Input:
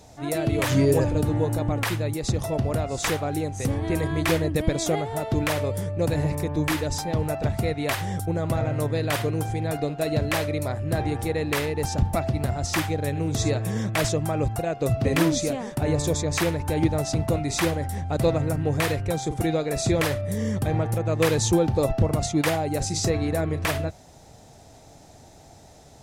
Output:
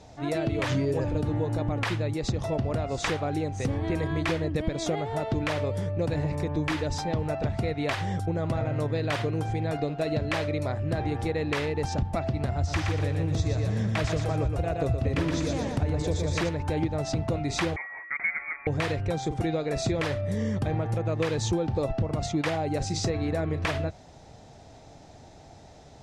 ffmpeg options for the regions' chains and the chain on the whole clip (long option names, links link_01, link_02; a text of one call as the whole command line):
ffmpeg -i in.wav -filter_complex "[0:a]asettb=1/sr,asplit=3[link_01][link_02][link_03];[link_01]atrim=end=12.554[link_04];[link_02]atrim=start=12.55:end=16.49,asetpts=PTS-STARTPTS,afade=type=in:duration=0.004:curve=qsin,afade=type=out:start_time=3.936:duration=0.004:curve=qsin,equalizer=frequency=75:width_type=o:width=0.73:gain=14.5,aecho=1:1:120|240|360|480|600:0.596|0.232|0.0906|0.0353|0.0138,atrim=end_sample=173754[link_05];[link_03]atrim=start=16.486[link_06];[link_04][link_05]acrossfade=duration=0.004:curve1=hsin:curve2=qsin[link_07];[link_07][link_06]acrossfade=duration=0.004:curve1=qsin:curve2=hsin,asettb=1/sr,asplit=3[link_08][link_09][link_10];[link_08]atrim=end=17.764[link_11];[link_09]atrim=start=17.76:end=18.67,asetpts=PTS-STARTPTS,afade=type=in:duration=0.004:curve=qsin,afade=type=out:start_time=0.906:duration=0.004:curve=qsin,highpass=frequency=480:width=0.5412,highpass=frequency=480:width=1.3066,equalizer=frequency=630:width=4.7:gain=-4.5,lowpass=frequency=2300:width_type=q:width=0.5098,lowpass=frequency=2300:width_type=q:width=0.6013,lowpass=frequency=2300:width_type=q:width=0.9,lowpass=frequency=2300:width_type=q:width=2.563,afreqshift=-2700[link_12];[link_10]atrim=start=18.666[link_13];[link_11][link_12]acrossfade=duration=0.004:curve1=hsin:curve2=qsin[link_14];[link_14][link_13]acrossfade=duration=0.004:curve1=qsin:curve2=hsin,lowpass=5100,acompressor=threshold=-24dB:ratio=4" out.wav